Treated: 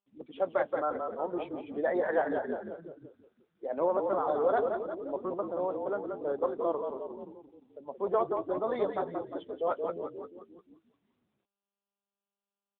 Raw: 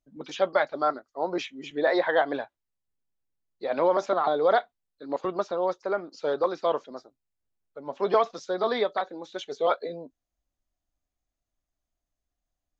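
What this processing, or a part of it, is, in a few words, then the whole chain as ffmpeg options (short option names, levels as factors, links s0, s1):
mobile call with aggressive noise cancelling: -filter_complex "[0:a]asettb=1/sr,asplit=3[s0][s1][s2];[s0]atrim=end=1.114[s3];[s1]atrim=start=1.11:end=1.6,asetpts=PTS-STARTPTS,afade=t=in:d=0.004:c=qsin,afade=t=out:st=0.486:d=0.004:c=qsin,highpass=f=140:w=0.5412,highpass=f=140:w=1.3066[s4];[s2]atrim=start=1.596[s5];[s3][s4]acrossfade=d=0.004:c1=hsin:c2=qsin[s6];[s6][s5]acrossfade=d=0.004:c1=qsin:c2=hsin,equalizer=f=3600:w=0.39:g=-5.5,asplit=9[s7][s8][s9][s10][s11][s12][s13][s14][s15];[s8]adelay=175,afreqshift=-38,volume=0.562[s16];[s9]adelay=350,afreqshift=-76,volume=0.331[s17];[s10]adelay=525,afreqshift=-114,volume=0.195[s18];[s11]adelay=700,afreqshift=-152,volume=0.116[s19];[s12]adelay=875,afreqshift=-190,volume=0.0684[s20];[s13]adelay=1050,afreqshift=-228,volume=0.0403[s21];[s14]adelay=1225,afreqshift=-266,volume=0.0237[s22];[s15]adelay=1400,afreqshift=-304,volume=0.014[s23];[s7][s16][s17][s18][s19][s20][s21][s22][s23]amix=inputs=9:normalize=0,highpass=120,afftdn=nr=14:nf=-38,volume=0.596" -ar 8000 -c:a libopencore_amrnb -b:a 10200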